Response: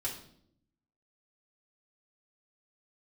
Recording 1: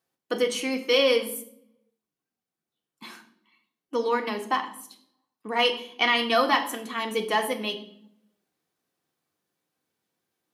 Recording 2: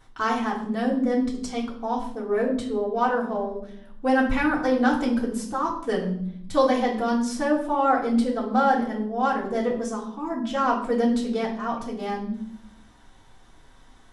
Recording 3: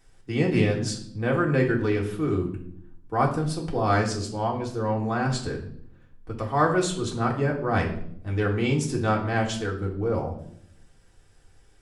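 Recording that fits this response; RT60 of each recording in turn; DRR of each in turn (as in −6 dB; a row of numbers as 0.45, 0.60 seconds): 2; non-exponential decay, 0.70 s, 0.70 s; 4.0, −6.0, −1.5 decibels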